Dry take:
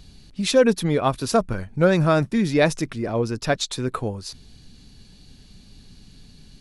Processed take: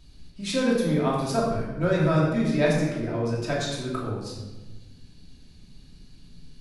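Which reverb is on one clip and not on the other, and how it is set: simulated room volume 720 m³, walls mixed, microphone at 2.8 m; trim -11 dB

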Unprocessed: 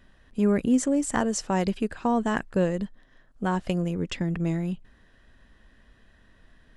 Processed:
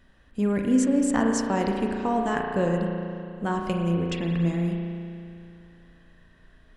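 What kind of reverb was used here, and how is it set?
spring tank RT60 2.5 s, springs 35 ms, chirp 25 ms, DRR 1 dB; trim -1.5 dB

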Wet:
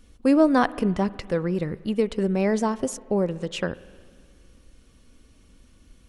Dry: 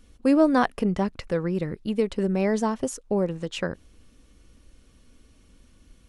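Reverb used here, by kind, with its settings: spring tank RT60 2 s, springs 45/51 ms, chirp 70 ms, DRR 18.5 dB; trim +1 dB

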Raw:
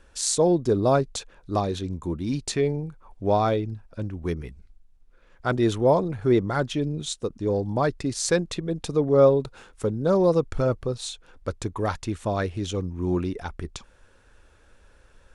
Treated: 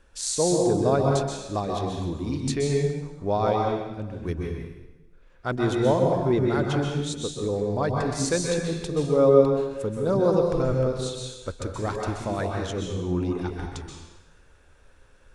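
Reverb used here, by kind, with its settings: plate-style reverb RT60 1.1 s, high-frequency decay 0.9×, pre-delay 115 ms, DRR -0.5 dB; trim -3.5 dB

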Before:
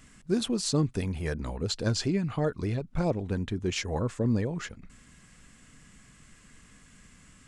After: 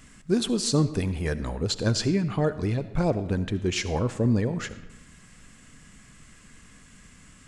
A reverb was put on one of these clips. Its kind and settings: algorithmic reverb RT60 1 s, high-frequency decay 0.75×, pre-delay 30 ms, DRR 13.5 dB; trim +3.5 dB

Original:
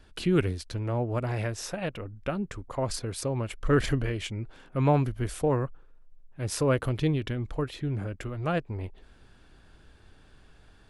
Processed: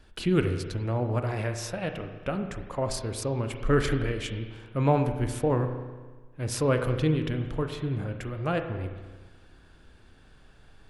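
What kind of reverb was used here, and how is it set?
spring tank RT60 1.4 s, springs 32/36 ms, chirp 70 ms, DRR 6 dB

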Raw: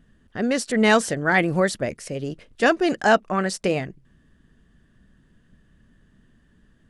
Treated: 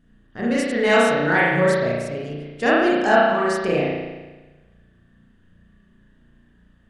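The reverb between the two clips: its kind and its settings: spring tank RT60 1.2 s, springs 34 ms, chirp 25 ms, DRR -6.5 dB; trim -5 dB

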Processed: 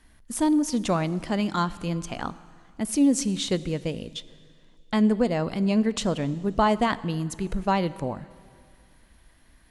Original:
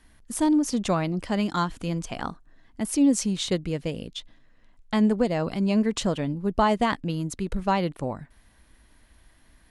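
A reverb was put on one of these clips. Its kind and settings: plate-style reverb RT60 2.3 s, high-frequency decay 0.95×, DRR 16.5 dB

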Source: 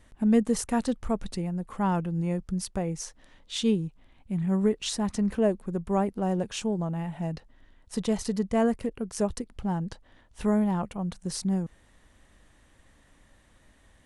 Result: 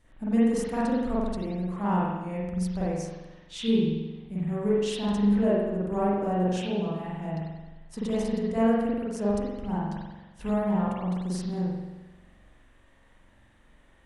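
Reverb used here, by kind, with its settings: spring tank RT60 1.1 s, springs 44 ms, chirp 55 ms, DRR -8.5 dB; trim -8 dB

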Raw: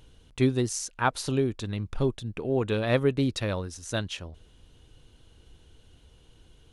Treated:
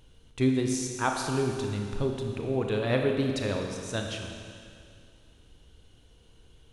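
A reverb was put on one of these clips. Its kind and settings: Schroeder reverb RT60 2.3 s, combs from 27 ms, DRR 2 dB; trim -3 dB

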